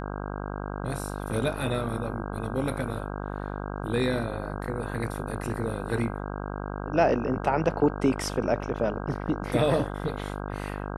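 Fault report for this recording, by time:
mains buzz 50 Hz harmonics 32 −34 dBFS

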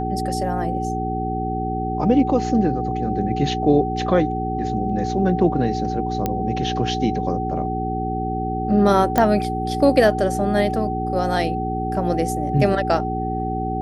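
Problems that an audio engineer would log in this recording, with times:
mains hum 60 Hz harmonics 7 −26 dBFS
whistle 760 Hz −25 dBFS
0:06.26: click −8 dBFS
0:09.18: click −5 dBFS

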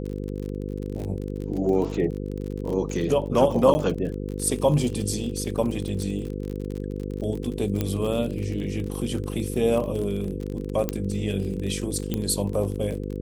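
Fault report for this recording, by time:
mains buzz 50 Hz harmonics 10 −31 dBFS
surface crackle 39 per second −30 dBFS
0:03.74–0:03.75: drop-out 10 ms
0:07.81: click −11 dBFS
0:10.89: click −10 dBFS
0:12.14: click −13 dBFS

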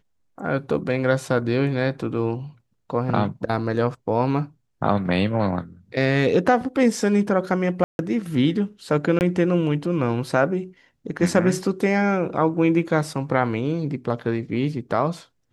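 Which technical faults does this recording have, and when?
0:07.84–0:07.99: drop-out 151 ms
0:09.19–0:09.21: drop-out 19 ms

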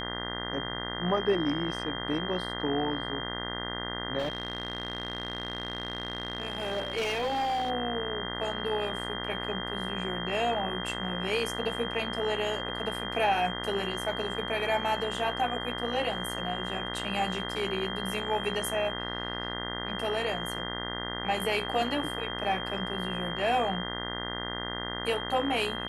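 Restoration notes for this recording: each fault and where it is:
mains buzz 60 Hz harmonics 34 −37 dBFS
whistle 3,200 Hz −37 dBFS
0:04.18–0:07.71: clipping −26 dBFS

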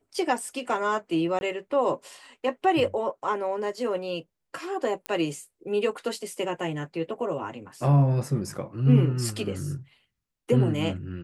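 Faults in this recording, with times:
0:01.39–0:01.41: drop-out 21 ms
0:05.06: click −15 dBFS

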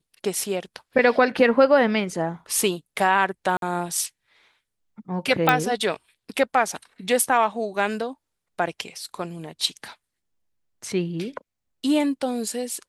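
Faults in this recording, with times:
0:03.57–0:03.62: drop-out 52 ms
0:05.49: click −4 dBFS

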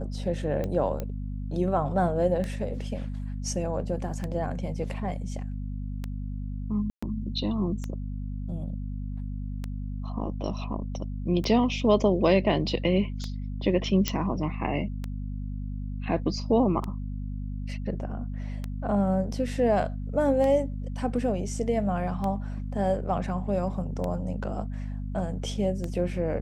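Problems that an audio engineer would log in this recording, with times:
mains hum 50 Hz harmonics 5 −33 dBFS
scratch tick 33 1/3 rpm −19 dBFS
0:01.00: click −19 dBFS
0:06.90–0:07.03: drop-out 125 ms
0:14.08: click −9 dBFS

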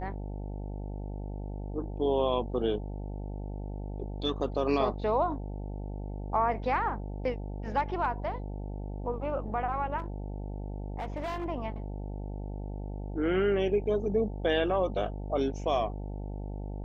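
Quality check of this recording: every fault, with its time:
mains buzz 50 Hz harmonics 18 −37 dBFS
0:09.98–0:11.46: clipping −30.5 dBFS

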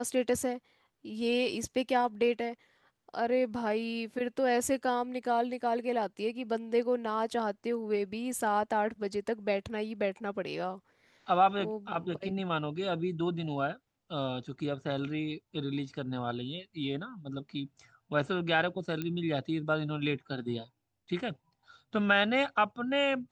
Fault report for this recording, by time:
0:19.02: click −21 dBFS

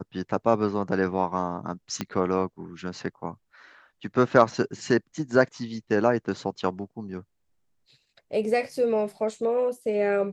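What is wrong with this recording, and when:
0:02.01: click −13 dBFS

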